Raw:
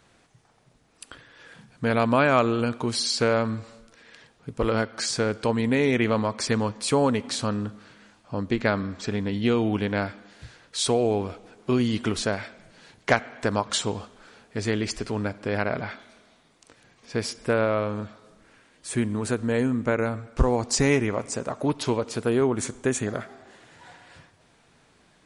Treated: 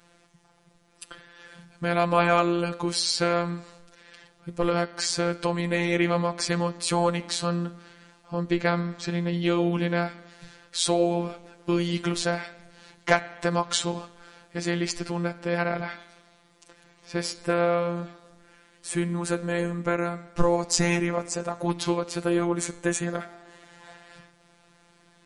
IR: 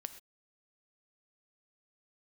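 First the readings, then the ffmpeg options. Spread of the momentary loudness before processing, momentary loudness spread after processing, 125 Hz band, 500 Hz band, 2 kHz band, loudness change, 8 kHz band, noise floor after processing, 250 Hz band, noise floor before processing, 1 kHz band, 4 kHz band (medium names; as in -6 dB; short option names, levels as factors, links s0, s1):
13 LU, 13 LU, -1.0 dB, -1.5 dB, -0.5 dB, -1.0 dB, +0.5 dB, -61 dBFS, -2.0 dB, -61 dBFS, +0.5 dB, +0.5 dB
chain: -af "bandreject=f=158.8:t=h:w=4,bandreject=f=317.6:t=h:w=4,bandreject=f=476.4:t=h:w=4,bandreject=f=635.2:t=h:w=4,bandreject=f=794:t=h:w=4,bandreject=f=952.8:t=h:w=4,bandreject=f=1111.6:t=h:w=4,bandreject=f=1270.4:t=h:w=4,bandreject=f=1429.2:t=h:w=4,bandreject=f=1588:t=h:w=4,bandreject=f=1746.8:t=h:w=4,bandreject=f=1905.6:t=h:w=4,bandreject=f=2064.4:t=h:w=4,bandreject=f=2223.2:t=h:w=4,bandreject=f=2382:t=h:w=4,bandreject=f=2540.8:t=h:w=4,bandreject=f=2699.6:t=h:w=4,bandreject=f=2858.4:t=h:w=4,bandreject=f=3017.2:t=h:w=4,bandreject=f=3176:t=h:w=4,bandreject=f=3334.8:t=h:w=4,bandreject=f=3493.6:t=h:w=4,bandreject=f=3652.4:t=h:w=4,bandreject=f=3811.2:t=h:w=4,bandreject=f=3970:t=h:w=4,bandreject=f=4128.8:t=h:w=4,bandreject=f=4287.6:t=h:w=4,bandreject=f=4446.4:t=h:w=4,bandreject=f=4605.2:t=h:w=4,afftfilt=real='hypot(re,im)*cos(PI*b)':imag='0':win_size=1024:overlap=0.75,volume=1.58"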